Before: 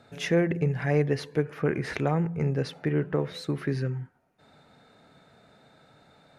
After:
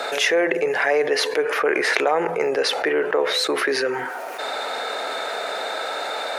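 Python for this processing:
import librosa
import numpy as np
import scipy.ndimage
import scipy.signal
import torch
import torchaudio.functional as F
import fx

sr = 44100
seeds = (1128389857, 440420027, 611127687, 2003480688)

y = scipy.signal.sosfilt(scipy.signal.butter(4, 450.0, 'highpass', fs=sr, output='sos'), x)
y = fx.env_flatten(y, sr, amount_pct=70)
y = y * 10.0 ** (7.0 / 20.0)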